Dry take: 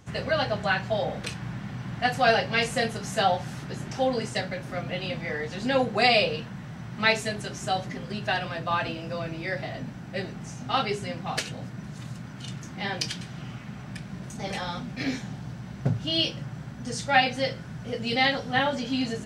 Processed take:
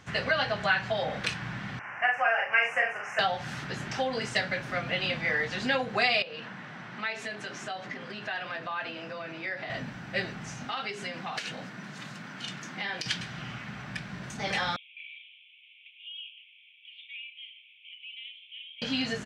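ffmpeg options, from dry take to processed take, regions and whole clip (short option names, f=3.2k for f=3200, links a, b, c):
-filter_complex "[0:a]asettb=1/sr,asplit=3[a][b][c];[a]atrim=end=1.794[d];[b]atrim=start=1.79:end=3.19,asetpts=PTS-STARTPTS,afade=t=in:d=0.004:c=qsin,afade=t=out:st=1.396:d=0.004:c=qsin,asuperstop=centerf=3900:order=8:qfactor=1.5,acrossover=split=510 3300:gain=0.0631 1 0.158[e][f][g];[e][f][g]amix=inputs=3:normalize=0,asplit=2[h][i];[i]adelay=41,volume=-3dB[j];[h][j]amix=inputs=2:normalize=0,atrim=end_sample=61740[k];[c]atrim=start=3.186[l];[d][k]acrossfade=d=0.004:c1=hsin:c2=qsin[m];[m][l]acrossfade=d=0.004:c1=qsin:c2=hsin,asettb=1/sr,asplit=3[n][o][p];[n]atrim=end=6.224[q];[o]atrim=start=6.22:end=9.7,asetpts=PTS-STARTPTS,afade=t=in:d=0.004:c=qsin,afade=t=out:st=3.476:d=0.004:c=qsin,highpass=210,aemphasis=mode=reproduction:type=cd,acompressor=threshold=-36dB:ratio=4:attack=3.2:release=140:knee=1:detection=peak[r];[p]atrim=start=9.696[s];[q][r]acrossfade=d=0.004:c1=hsin:c2=qsin[t];[t][s]acrossfade=d=0.004:c1=qsin:c2=hsin,asettb=1/sr,asplit=3[u][v][w];[u]atrim=end=10.654[x];[v]atrim=start=10.65:end=13.06,asetpts=PTS-STARTPTS,afade=t=in:d=0.004:c=qsin,afade=t=out:st=2.406:d=0.004:c=qsin,highpass=f=160:w=0.5412,highpass=f=160:w=1.3066,acompressor=threshold=-33dB:ratio=10:attack=3.2:release=140:knee=1:detection=peak[y];[w]atrim=start=13.056[z];[x][y]acrossfade=d=0.004:c1=hsin:c2=qsin[aa];[aa][z]acrossfade=d=0.004:c1=qsin:c2=hsin,asettb=1/sr,asplit=3[ab][ac][ad];[ab]atrim=end=14.764[ae];[ac]atrim=start=14.76:end=18.82,asetpts=PTS-STARTPTS,afade=t=in:d=0.004:c=qsin,afade=t=out:st=4.056:d=0.004:c=qsin,asuperpass=centerf=2800:order=12:qfactor=2.4,acompressor=threshold=-49dB:ratio=4:attack=3.2:release=140:knee=1:detection=peak[af];[ad]atrim=start=18.816[ag];[ae][af]acrossfade=d=0.004:c1=hsin:c2=qsin[ah];[ah][ag]acrossfade=d=0.004:c1=qsin:c2=hsin,lowshelf=f=140:g=-4.5,acompressor=threshold=-26dB:ratio=6,firequalizer=gain_entry='entry(380,0);entry(1600,9);entry(9900,-4)':delay=0.05:min_phase=1,volume=-1.5dB"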